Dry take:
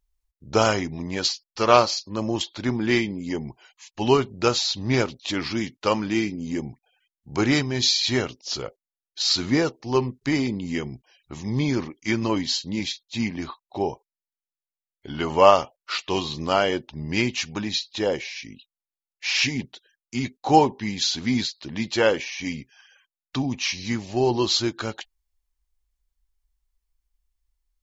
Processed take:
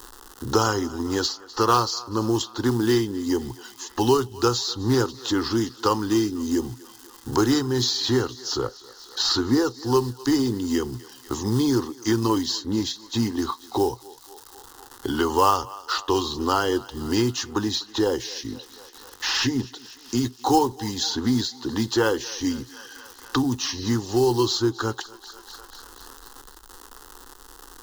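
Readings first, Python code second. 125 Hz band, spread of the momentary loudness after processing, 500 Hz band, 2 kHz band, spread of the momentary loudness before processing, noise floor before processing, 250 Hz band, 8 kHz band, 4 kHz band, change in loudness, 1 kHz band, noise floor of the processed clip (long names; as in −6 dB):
+1.5 dB, 18 LU, −0.5 dB, −4.5 dB, 13 LU, below −85 dBFS, +2.5 dB, can't be measured, −1.0 dB, 0.0 dB, −0.5 dB, −48 dBFS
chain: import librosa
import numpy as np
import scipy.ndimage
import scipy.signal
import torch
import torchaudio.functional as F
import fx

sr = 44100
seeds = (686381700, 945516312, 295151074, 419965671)

p1 = fx.peak_eq(x, sr, hz=120.0, db=9.0, octaves=0.29)
p2 = fx.dmg_crackle(p1, sr, seeds[0], per_s=250.0, level_db=-46.0)
p3 = fx.quant_float(p2, sr, bits=2)
p4 = p2 + F.gain(torch.from_numpy(p3), -4.0).numpy()
p5 = fx.fixed_phaser(p4, sr, hz=620.0, stages=6)
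p6 = p5 + fx.echo_thinned(p5, sr, ms=246, feedback_pct=58, hz=550.0, wet_db=-22.5, dry=0)
y = fx.band_squash(p6, sr, depth_pct=70)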